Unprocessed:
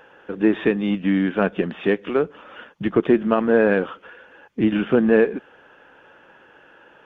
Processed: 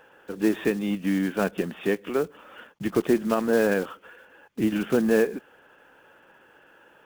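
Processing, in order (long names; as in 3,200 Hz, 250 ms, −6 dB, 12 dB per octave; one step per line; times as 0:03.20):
one scale factor per block 5 bits
level −5 dB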